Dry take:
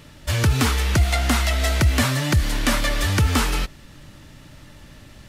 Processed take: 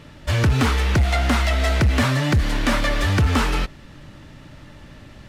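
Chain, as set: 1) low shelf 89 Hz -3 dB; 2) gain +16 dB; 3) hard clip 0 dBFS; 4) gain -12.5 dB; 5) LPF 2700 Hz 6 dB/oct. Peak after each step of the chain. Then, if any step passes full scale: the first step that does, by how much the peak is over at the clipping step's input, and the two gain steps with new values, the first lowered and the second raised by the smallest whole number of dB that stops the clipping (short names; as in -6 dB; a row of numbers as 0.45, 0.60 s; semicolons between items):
-8.5, +7.5, 0.0, -12.5, -12.5 dBFS; step 2, 7.5 dB; step 2 +8 dB, step 4 -4.5 dB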